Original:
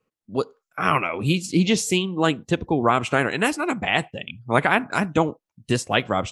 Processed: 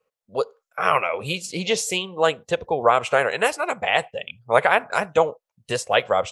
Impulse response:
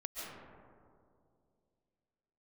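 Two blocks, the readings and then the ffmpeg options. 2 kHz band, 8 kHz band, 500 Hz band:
+0.5 dB, 0.0 dB, +3.5 dB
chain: -af "lowshelf=f=390:t=q:w=3:g=-8.5"

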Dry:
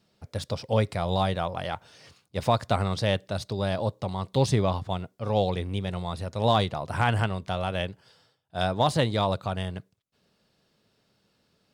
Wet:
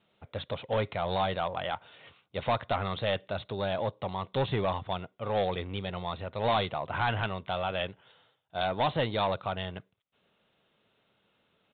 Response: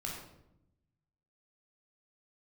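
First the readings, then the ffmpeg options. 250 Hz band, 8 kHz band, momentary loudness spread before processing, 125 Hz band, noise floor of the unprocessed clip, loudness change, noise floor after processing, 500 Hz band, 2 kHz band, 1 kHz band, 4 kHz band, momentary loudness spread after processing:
-7.0 dB, under -35 dB, 10 LU, -8.5 dB, -71 dBFS, -4.0 dB, -73 dBFS, -3.0 dB, -1.5 dB, -2.5 dB, -3.0 dB, 9 LU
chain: -af "lowshelf=f=370:g=-10,bandreject=f=1.7k:w=18,aresample=8000,asoftclip=type=tanh:threshold=-23.5dB,aresample=44100,volume=2.5dB"

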